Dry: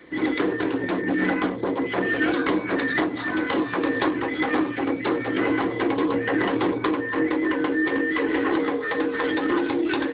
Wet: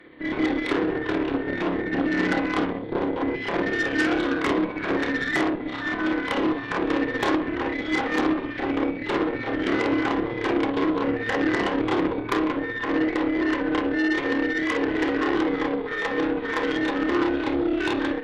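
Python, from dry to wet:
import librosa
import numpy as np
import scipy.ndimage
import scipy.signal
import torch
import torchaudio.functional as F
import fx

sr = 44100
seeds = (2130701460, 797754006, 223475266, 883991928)

y = fx.stretch_grains(x, sr, factor=1.8, grain_ms=129.0)
y = fx.cheby_harmonics(y, sr, harmonics=(6, 8), levels_db=(-16, -15), full_scale_db=-9.0)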